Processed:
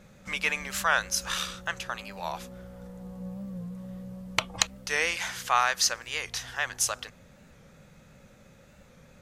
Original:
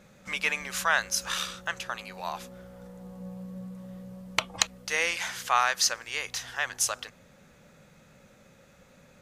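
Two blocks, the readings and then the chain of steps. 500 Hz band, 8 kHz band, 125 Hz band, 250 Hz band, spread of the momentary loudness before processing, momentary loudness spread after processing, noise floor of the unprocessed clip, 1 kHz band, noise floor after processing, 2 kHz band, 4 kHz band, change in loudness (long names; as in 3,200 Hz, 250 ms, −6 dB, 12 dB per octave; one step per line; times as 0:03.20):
+0.5 dB, 0.0 dB, +3.0 dB, +2.5 dB, 19 LU, 16 LU, −58 dBFS, +0.5 dB, −56 dBFS, 0.0 dB, 0.0 dB, −0.5 dB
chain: low-shelf EQ 120 Hz +8.5 dB
wow of a warped record 45 rpm, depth 100 cents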